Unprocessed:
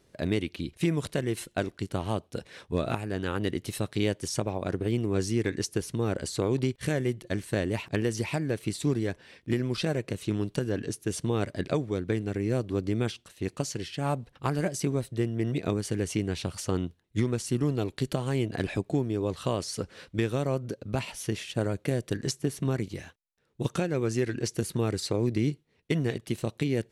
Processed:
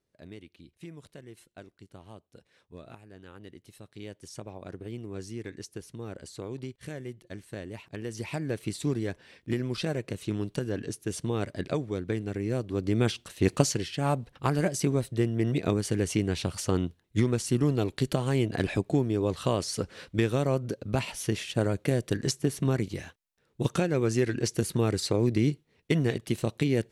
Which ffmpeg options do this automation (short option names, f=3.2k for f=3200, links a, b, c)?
-af "volume=9dB,afade=t=in:st=3.84:d=0.68:silence=0.446684,afade=t=in:st=7.96:d=0.53:silence=0.354813,afade=t=in:st=12.73:d=0.84:silence=0.281838,afade=t=out:st=13.57:d=0.27:silence=0.446684"